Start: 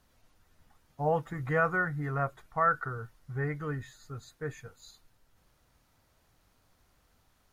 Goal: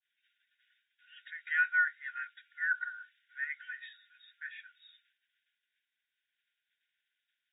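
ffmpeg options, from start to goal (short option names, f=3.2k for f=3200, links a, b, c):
-af "agate=range=-33dB:threshold=-58dB:ratio=3:detection=peak,highshelf=f=2.3k:g=7.5,afftfilt=real='re*between(b*sr/4096,1400,3800)':imag='im*between(b*sr/4096,1400,3800)':win_size=4096:overlap=0.75,volume=1dB"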